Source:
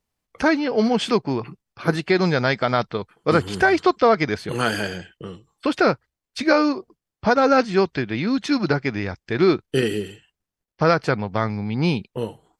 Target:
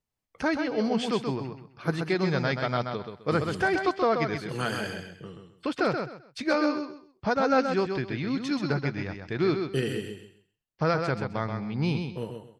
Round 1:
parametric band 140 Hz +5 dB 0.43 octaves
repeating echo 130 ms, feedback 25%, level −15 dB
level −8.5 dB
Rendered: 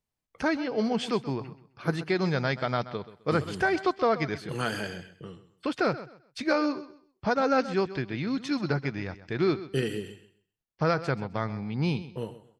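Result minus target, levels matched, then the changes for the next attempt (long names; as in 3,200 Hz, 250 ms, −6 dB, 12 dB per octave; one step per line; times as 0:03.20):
echo-to-direct −9 dB
change: repeating echo 130 ms, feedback 25%, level −6 dB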